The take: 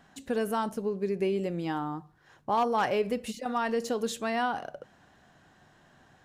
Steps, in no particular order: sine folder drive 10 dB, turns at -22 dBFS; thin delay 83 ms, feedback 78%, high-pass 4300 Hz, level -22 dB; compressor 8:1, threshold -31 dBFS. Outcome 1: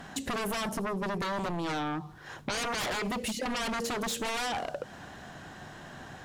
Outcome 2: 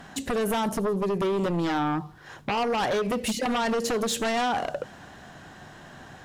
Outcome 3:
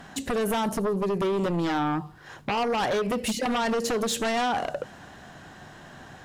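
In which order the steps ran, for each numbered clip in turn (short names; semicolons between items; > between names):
sine folder > compressor > thin delay; compressor > sine folder > thin delay; compressor > thin delay > sine folder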